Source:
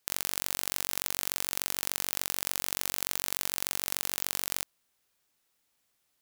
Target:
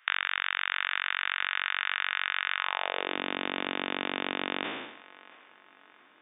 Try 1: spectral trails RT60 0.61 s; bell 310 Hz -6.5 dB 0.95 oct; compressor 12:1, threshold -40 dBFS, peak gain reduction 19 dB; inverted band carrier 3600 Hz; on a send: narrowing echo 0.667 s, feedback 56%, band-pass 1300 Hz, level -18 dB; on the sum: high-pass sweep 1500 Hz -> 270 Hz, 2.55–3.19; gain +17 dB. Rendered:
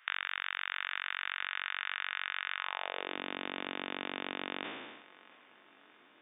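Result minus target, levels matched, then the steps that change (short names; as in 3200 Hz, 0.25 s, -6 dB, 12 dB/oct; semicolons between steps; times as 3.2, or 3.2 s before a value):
compressor: peak gain reduction +7 dB
change: compressor 12:1, threshold -32.5 dBFS, peak gain reduction 12.5 dB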